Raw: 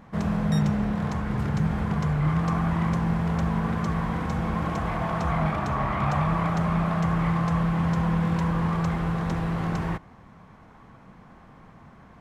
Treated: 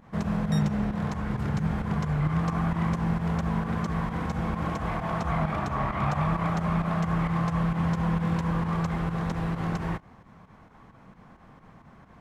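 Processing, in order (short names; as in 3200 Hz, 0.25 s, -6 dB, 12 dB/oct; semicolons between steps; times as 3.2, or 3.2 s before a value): pump 132 bpm, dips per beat 2, -10 dB, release 92 ms; gain -1.5 dB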